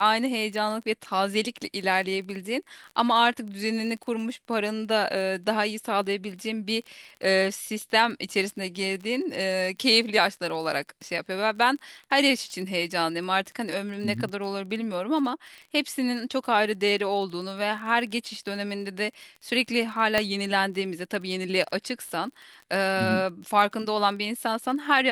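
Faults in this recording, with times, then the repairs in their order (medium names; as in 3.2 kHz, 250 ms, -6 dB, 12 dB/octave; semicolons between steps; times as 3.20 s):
crackle 29 per s -35 dBFS
20.18 s: pop -8 dBFS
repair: de-click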